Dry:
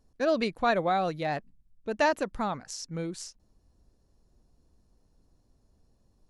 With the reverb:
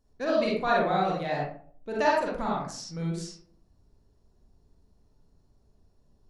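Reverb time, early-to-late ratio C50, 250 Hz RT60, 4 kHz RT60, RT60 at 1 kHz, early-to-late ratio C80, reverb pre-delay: 0.50 s, -0.5 dB, 0.65 s, 0.30 s, 0.45 s, 5.5 dB, 36 ms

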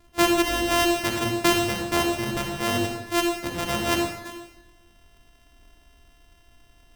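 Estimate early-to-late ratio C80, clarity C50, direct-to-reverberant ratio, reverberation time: 5.5 dB, 3.0 dB, 2.0 dB, 1.0 s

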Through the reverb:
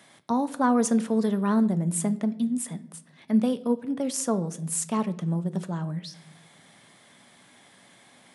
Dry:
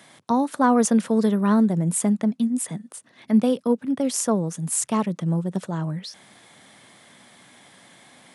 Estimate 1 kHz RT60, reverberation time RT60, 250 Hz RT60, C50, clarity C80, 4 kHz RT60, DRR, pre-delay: 0.60 s, 0.70 s, 1.2 s, 17.5 dB, 20.0 dB, 0.55 s, 11.5 dB, 5 ms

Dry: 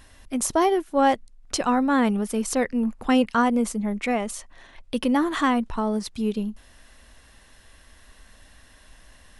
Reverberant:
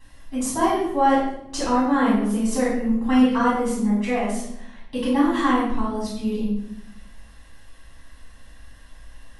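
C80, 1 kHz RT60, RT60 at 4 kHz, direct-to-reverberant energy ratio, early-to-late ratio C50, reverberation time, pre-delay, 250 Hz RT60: 5.0 dB, 0.75 s, 0.60 s, -9.0 dB, 1.0 dB, 0.85 s, 4 ms, 1.4 s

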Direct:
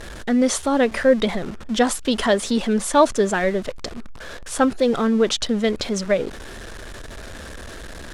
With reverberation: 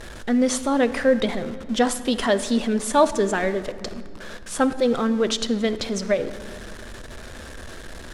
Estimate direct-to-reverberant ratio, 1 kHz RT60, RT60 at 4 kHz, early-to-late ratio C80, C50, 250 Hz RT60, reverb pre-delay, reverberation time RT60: 11.0 dB, 2.0 s, 1.4 s, 15.0 dB, 13.5 dB, 3.7 s, 8 ms, 2.2 s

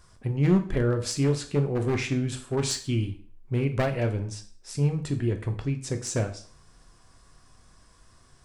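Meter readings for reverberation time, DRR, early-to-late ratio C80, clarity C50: 0.50 s, 5.5 dB, 17.0 dB, 12.5 dB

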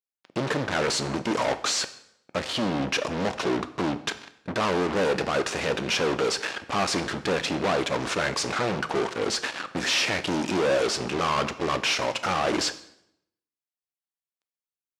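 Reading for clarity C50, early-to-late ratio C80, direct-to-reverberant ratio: 15.0 dB, 17.5 dB, 10.5 dB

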